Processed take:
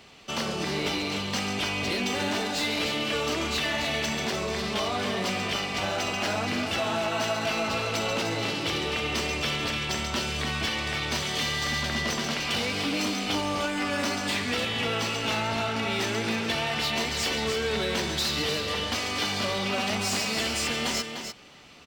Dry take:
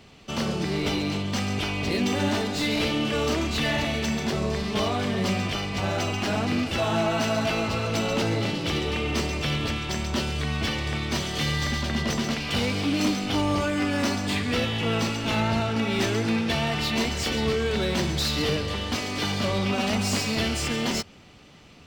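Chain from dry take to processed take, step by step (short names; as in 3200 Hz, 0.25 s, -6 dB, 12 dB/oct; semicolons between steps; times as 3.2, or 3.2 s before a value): low shelf 320 Hz -11 dB; compressor, threshold -27 dBFS, peak gain reduction 4.5 dB; on a send: echo 0.299 s -7.5 dB; on the sum: gain +2.5 dB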